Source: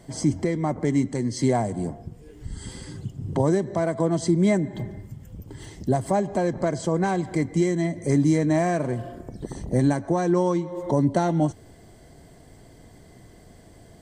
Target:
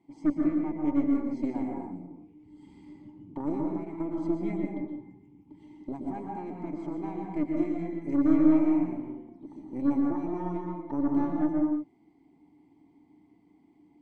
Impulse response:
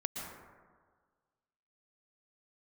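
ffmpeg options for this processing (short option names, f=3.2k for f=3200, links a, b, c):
-filter_complex "[0:a]asplit=3[a][b][c];[a]bandpass=f=300:t=q:w=8,volume=0dB[d];[b]bandpass=f=870:t=q:w=8,volume=-6dB[e];[c]bandpass=f=2.24k:t=q:w=8,volume=-9dB[f];[d][e][f]amix=inputs=3:normalize=0,aeval=exprs='0.178*(cos(1*acos(clip(val(0)/0.178,-1,1)))-cos(1*PI/2))+0.0178*(cos(2*acos(clip(val(0)/0.178,-1,1)))-cos(2*PI/2))+0.0112*(cos(6*acos(clip(val(0)/0.178,-1,1)))-cos(6*PI/2))+0.00501*(cos(7*acos(clip(val(0)/0.178,-1,1)))-cos(7*PI/2))':c=same[g];[1:a]atrim=start_sample=2205,afade=t=out:st=0.4:d=0.01,atrim=end_sample=18081[h];[g][h]afir=irnorm=-1:irlink=0"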